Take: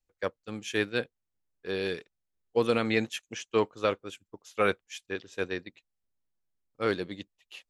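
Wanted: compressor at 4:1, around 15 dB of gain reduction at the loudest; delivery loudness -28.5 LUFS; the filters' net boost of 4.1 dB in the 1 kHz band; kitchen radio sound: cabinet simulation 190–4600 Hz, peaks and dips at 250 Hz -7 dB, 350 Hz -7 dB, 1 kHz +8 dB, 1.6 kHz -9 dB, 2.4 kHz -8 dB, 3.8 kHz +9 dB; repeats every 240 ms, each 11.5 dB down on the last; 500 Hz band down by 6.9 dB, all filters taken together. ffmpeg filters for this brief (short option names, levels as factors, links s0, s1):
-af "equalizer=f=500:t=o:g=-6.5,equalizer=f=1000:t=o:g=4,acompressor=threshold=0.00891:ratio=4,highpass=190,equalizer=f=250:t=q:w=4:g=-7,equalizer=f=350:t=q:w=4:g=-7,equalizer=f=1000:t=q:w=4:g=8,equalizer=f=1600:t=q:w=4:g=-9,equalizer=f=2400:t=q:w=4:g=-8,equalizer=f=3800:t=q:w=4:g=9,lowpass=f=4600:w=0.5412,lowpass=f=4600:w=1.3066,aecho=1:1:240|480|720:0.266|0.0718|0.0194,volume=7.94"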